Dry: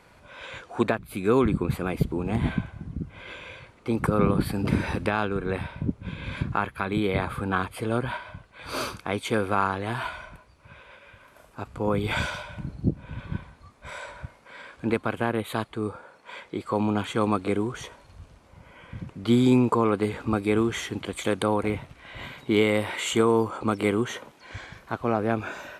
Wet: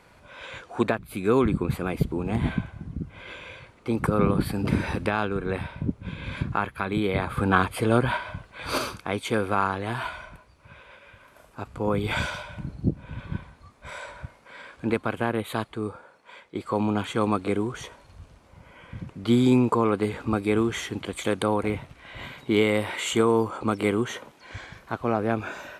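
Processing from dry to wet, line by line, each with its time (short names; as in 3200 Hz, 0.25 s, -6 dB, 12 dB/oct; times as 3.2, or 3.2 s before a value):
7.37–8.78 gain +5.5 dB
15.68–16.55 fade out, to -9 dB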